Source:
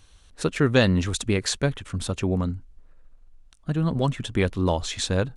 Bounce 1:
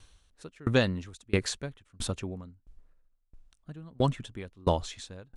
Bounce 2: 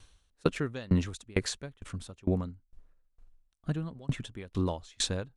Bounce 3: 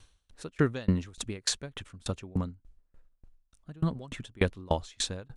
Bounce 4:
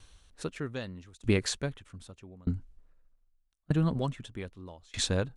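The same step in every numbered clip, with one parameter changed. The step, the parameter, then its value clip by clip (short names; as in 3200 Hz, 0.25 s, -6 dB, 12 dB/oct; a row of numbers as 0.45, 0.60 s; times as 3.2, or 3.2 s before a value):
dB-ramp tremolo, rate: 1.5, 2.2, 3.4, 0.81 Hz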